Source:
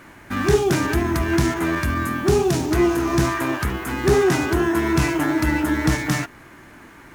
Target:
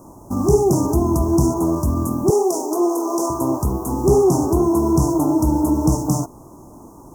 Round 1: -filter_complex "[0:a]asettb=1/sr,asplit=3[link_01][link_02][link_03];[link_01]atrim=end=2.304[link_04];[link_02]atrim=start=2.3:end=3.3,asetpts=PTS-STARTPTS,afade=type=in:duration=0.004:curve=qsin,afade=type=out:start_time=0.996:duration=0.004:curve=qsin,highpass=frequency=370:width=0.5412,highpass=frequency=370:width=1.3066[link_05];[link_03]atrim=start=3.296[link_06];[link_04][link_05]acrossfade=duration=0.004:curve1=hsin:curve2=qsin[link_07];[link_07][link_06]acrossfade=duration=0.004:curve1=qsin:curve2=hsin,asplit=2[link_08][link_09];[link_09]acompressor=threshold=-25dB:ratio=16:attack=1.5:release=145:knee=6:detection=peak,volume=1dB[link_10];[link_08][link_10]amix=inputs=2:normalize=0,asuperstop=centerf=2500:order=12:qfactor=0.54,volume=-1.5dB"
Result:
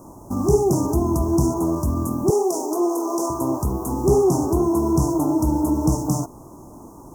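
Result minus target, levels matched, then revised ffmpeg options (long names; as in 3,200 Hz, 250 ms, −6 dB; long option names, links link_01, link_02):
downward compressor: peak gain reduction +9 dB
-filter_complex "[0:a]asettb=1/sr,asplit=3[link_01][link_02][link_03];[link_01]atrim=end=2.304[link_04];[link_02]atrim=start=2.3:end=3.3,asetpts=PTS-STARTPTS,afade=type=in:duration=0.004:curve=qsin,afade=type=out:start_time=0.996:duration=0.004:curve=qsin,highpass=frequency=370:width=0.5412,highpass=frequency=370:width=1.3066[link_05];[link_03]atrim=start=3.296[link_06];[link_04][link_05]acrossfade=duration=0.004:curve1=hsin:curve2=qsin[link_07];[link_07][link_06]acrossfade=duration=0.004:curve1=qsin:curve2=hsin,asplit=2[link_08][link_09];[link_09]acompressor=threshold=-15.5dB:ratio=16:attack=1.5:release=145:knee=6:detection=peak,volume=1dB[link_10];[link_08][link_10]amix=inputs=2:normalize=0,asuperstop=centerf=2500:order=12:qfactor=0.54,volume=-1.5dB"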